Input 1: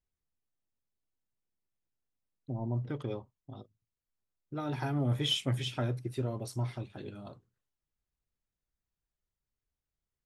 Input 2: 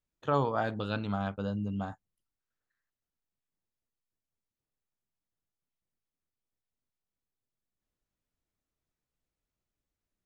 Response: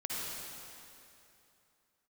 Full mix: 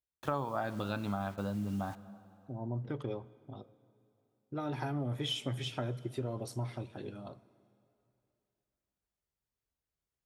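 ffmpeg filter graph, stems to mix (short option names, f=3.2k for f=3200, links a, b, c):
-filter_complex "[0:a]highpass=45,volume=-2.5dB,afade=t=in:st=2.35:d=0.52:silence=0.375837,asplit=2[a][b];[b]volume=-22.5dB[c];[1:a]equalizer=f=460:w=6.8:g=-10.5,bandreject=f=3k:w=12,acrusher=bits=8:mix=0:aa=0.000001,volume=1.5dB,asplit=2[d][e];[e]volume=-22.5dB[f];[2:a]atrim=start_sample=2205[g];[c][f]amix=inputs=2:normalize=0[h];[h][g]afir=irnorm=-1:irlink=0[i];[a][d][i]amix=inputs=3:normalize=0,equalizer=f=590:w=0.5:g=3.5,acompressor=threshold=-32dB:ratio=4"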